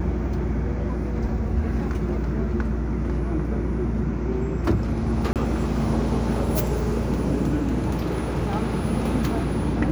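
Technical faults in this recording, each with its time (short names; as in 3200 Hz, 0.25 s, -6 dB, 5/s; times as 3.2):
5.33–5.36 gap 28 ms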